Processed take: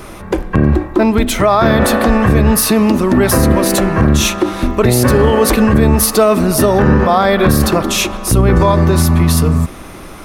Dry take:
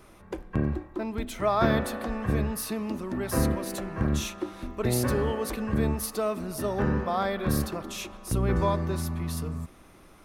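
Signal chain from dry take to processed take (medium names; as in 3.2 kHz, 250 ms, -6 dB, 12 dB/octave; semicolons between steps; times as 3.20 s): loudness maximiser +22.5 dB; trim -1 dB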